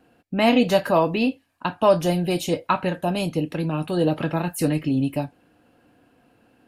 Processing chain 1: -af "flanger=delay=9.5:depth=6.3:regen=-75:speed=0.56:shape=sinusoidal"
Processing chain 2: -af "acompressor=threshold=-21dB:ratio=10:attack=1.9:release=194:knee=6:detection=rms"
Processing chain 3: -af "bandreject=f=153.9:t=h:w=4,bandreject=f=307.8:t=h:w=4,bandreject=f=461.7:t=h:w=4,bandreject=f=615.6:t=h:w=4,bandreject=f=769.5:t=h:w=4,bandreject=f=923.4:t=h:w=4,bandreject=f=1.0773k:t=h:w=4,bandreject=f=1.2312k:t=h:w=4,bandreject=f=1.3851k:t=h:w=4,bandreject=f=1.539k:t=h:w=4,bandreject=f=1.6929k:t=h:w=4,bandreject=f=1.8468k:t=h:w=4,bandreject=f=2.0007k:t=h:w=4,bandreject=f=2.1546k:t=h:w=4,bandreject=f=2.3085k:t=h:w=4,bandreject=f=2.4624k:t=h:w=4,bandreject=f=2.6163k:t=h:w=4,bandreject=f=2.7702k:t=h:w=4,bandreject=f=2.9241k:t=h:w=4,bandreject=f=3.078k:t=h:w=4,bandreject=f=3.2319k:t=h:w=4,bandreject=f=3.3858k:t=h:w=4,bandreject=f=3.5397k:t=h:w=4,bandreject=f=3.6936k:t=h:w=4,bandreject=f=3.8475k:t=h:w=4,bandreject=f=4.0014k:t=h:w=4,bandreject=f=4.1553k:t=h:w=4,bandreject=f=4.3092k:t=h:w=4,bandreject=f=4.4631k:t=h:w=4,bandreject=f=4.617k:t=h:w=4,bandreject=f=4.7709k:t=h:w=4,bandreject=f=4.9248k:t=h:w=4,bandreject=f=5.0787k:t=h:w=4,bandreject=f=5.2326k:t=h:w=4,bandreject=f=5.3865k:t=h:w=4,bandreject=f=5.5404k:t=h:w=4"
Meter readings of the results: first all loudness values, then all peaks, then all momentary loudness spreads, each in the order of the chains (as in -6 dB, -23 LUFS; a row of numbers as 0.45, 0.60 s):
-27.0, -29.0, -23.0 LUFS; -10.5, -14.5, -6.5 dBFS; 8, 4, 8 LU